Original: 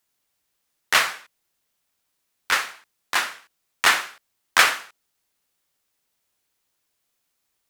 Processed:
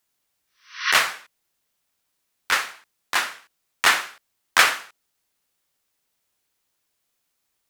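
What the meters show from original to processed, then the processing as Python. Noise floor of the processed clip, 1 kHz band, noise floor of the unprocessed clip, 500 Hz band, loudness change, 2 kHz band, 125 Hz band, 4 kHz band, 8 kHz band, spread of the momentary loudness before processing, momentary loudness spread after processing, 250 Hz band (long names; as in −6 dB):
−76 dBFS, 0.0 dB, −76 dBFS, 0.0 dB, 0.0 dB, +0.5 dB, can't be measured, +0.5 dB, 0.0 dB, 16 LU, 16 LU, 0.0 dB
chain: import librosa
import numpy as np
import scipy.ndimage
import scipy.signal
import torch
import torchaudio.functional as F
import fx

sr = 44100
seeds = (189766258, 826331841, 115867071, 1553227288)

y = fx.spec_repair(x, sr, seeds[0], start_s=0.48, length_s=0.41, low_hz=970.0, high_hz=6200.0, source='both')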